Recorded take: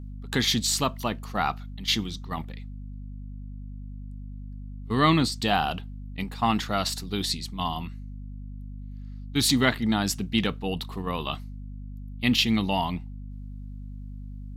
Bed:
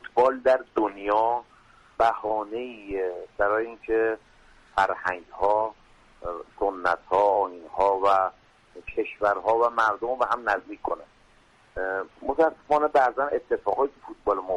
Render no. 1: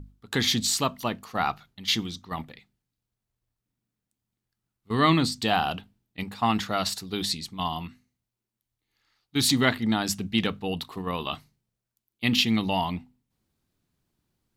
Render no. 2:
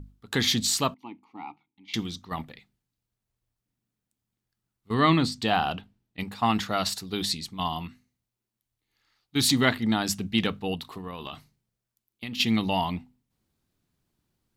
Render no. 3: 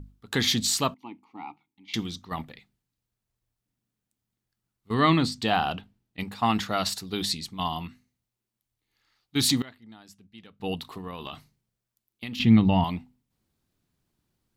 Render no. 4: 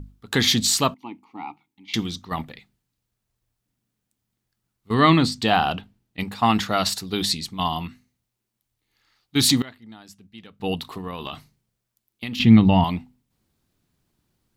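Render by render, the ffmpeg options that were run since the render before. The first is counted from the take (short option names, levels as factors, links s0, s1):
-af "bandreject=f=50:t=h:w=6,bandreject=f=100:t=h:w=6,bandreject=f=150:t=h:w=6,bandreject=f=200:t=h:w=6,bandreject=f=250:t=h:w=6"
-filter_complex "[0:a]asettb=1/sr,asplit=3[s0][s1][s2];[s0]atrim=end=0.944[s3];[s1]atrim=start=0.94:end=1.94,asetpts=PTS-STARTPTS,afade=t=in:d=0.004:c=qsin,afade=t=out:st=0.996:d=0.004:c=qsin,asplit=3[s4][s5][s6];[s4]bandpass=f=300:t=q:w=8,volume=1[s7];[s5]bandpass=f=870:t=q:w=8,volume=0.501[s8];[s6]bandpass=f=2240:t=q:w=8,volume=0.355[s9];[s7][s8][s9]amix=inputs=3:normalize=0[s10];[s2]atrim=start=1.936[s11];[s3][s10]acrossfade=d=0.004:c1=hsin:c2=qsin[s12];[s12][s11]acrossfade=d=0.004:c1=qsin:c2=hsin,asettb=1/sr,asplit=3[s13][s14][s15];[s13]atrim=end=4.944[s16];[s14]atrim=start=4.94:end=6.19,asetpts=PTS-STARTPTS,afade=t=in:d=0.004:c=qsin,afade=t=out:st=1.246:d=0.004:c=qsin,highshelf=f=6200:g=-7.5[s17];[s15]atrim=start=6.186[s18];[s16][s17]acrossfade=d=0.004:c1=hsin:c2=qsin[s19];[s19][s18]acrossfade=d=0.004:c1=qsin:c2=hsin,asplit=3[s20][s21][s22];[s20]afade=t=out:st=10.75:d=0.02[s23];[s21]acompressor=threshold=0.0224:ratio=6:attack=3.2:release=140:knee=1:detection=peak,afade=t=in:st=10.75:d=0.02,afade=t=out:st=12.39:d=0.02[s24];[s22]afade=t=in:st=12.39:d=0.02[s25];[s23][s24][s25]amix=inputs=3:normalize=0"
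-filter_complex "[0:a]asettb=1/sr,asplit=3[s0][s1][s2];[s0]atrim=end=12.394[s3];[s1]atrim=start=12.39:end=12.84,asetpts=PTS-STARTPTS,afade=t=in:d=0.004:c=qsin,afade=t=out:st=0.446:d=0.004:c=qsin,bass=f=250:g=12,treble=f=4000:g=-15[s4];[s2]atrim=start=12.836[s5];[s3][s4]acrossfade=d=0.004:c1=hsin:c2=qsin[s6];[s6][s5]acrossfade=d=0.004:c1=qsin:c2=hsin,asplit=3[s7][s8][s9];[s7]atrim=end=9.62,asetpts=PTS-STARTPTS,afade=t=out:st=9.38:d=0.24:c=log:silence=0.0630957[s10];[s8]atrim=start=9.62:end=10.6,asetpts=PTS-STARTPTS,volume=0.0631[s11];[s9]atrim=start=10.6,asetpts=PTS-STARTPTS,afade=t=in:d=0.24:c=log:silence=0.0630957[s12];[s10][s11][s12]concat=n=3:v=0:a=1"
-af "volume=1.78"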